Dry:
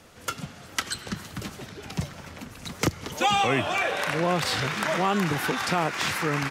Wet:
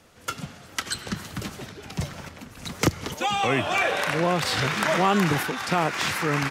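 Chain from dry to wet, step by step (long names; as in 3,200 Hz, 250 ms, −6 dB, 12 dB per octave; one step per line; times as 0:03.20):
sample-and-hold tremolo
level +3.5 dB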